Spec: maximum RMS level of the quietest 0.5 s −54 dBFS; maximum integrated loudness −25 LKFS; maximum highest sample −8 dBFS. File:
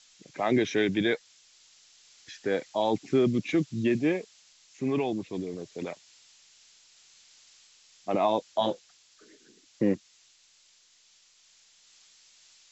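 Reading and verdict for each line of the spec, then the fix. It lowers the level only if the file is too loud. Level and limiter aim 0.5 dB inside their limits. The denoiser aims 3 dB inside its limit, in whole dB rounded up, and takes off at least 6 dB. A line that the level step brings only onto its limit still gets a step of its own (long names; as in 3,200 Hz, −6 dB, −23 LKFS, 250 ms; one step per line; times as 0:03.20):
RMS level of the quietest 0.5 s −62 dBFS: in spec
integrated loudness −29.0 LKFS: in spec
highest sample −13.5 dBFS: in spec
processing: no processing needed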